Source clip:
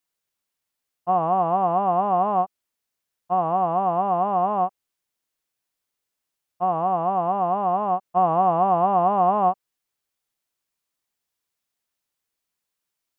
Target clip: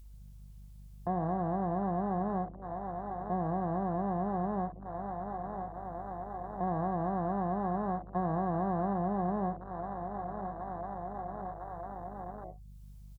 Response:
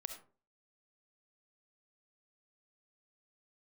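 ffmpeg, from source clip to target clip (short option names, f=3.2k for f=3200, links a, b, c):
-filter_complex "[0:a]asetnsamples=n=441:p=0,asendcmd='6.67 equalizer g -3;8.93 equalizer g -10',equalizer=f=1.6k:t=o:w=1.8:g=-9,asplit=2[a][b];[b]adelay=1002,lowpass=f=2.3k:p=1,volume=-18dB,asplit=2[c][d];[d]adelay=1002,lowpass=f=2.3k:p=1,volume=0.4,asplit=2[e][f];[f]adelay=1002,lowpass=f=2.3k:p=1,volume=0.4[g];[a][c][e][g]amix=inputs=4:normalize=0[h];[1:a]atrim=start_sample=2205,atrim=end_sample=3087,asetrate=52920,aresample=44100[i];[h][i]afir=irnorm=-1:irlink=0,acompressor=mode=upward:threshold=-33dB:ratio=2.5,adynamicequalizer=threshold=0.00891:dfrequency=770:dqfactor=1.9:tfrequency=770:tqfactor=1.9:attack=5:release=100:ratio=0.375:range=2:mode=cutabove:tftype=bell,acrossover=split=400|1700[j][k][l];[j]acompressor=threshold=-38dB:ratio=4[m];[k]acompressor=threshold=-44dB:ratio=4[n];[l]acompressor=threshold=-60dB:ratio=4[o];[m][n][o]amix=inputs=3:normalize=0,aeval=exprs='val(0)+0.002*(sin(2*PI*50*n/s)+sin(2*PI*2*50*n/s)/2+sin(2*PI*3*50*n/s)/3+sin(2*PI*4*50*n/s)/4+sin(2*PI*5*50*n/s)/5)':c=same,afwtdn=0.00891,volume=6dB"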